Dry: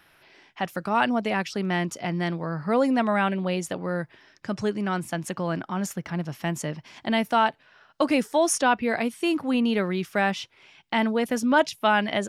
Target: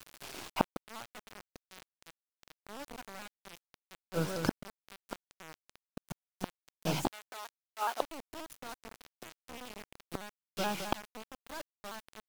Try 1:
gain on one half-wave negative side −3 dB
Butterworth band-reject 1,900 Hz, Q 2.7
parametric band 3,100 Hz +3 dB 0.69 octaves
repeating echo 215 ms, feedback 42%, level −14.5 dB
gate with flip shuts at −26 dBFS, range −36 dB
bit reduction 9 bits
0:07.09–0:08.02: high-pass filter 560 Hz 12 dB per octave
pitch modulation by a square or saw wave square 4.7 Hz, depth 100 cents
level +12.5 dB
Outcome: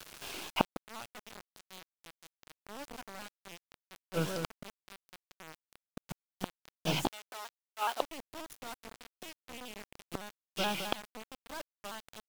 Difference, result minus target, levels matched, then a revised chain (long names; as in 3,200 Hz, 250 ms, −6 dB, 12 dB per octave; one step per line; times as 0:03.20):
4,000 Hz band +3.5 dB
gain on one half-wave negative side −3 dB
Butterworth band-reject 1,900 Hz, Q 2.7
parametric band 3,100 Hz −4.5 dB 0.69 octaves
repeating echo 215 ms, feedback 42%, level −14.5 dB
gate with flip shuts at −26 dBFS, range −36 dB
bit reduction 9 bits
0:07.09–0:08.02: high-pass filter 560 Hz 12 dB per octave
pitch modulation by a square or saw wave square 4.7 Hz, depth 100 cents
level +12.5 dB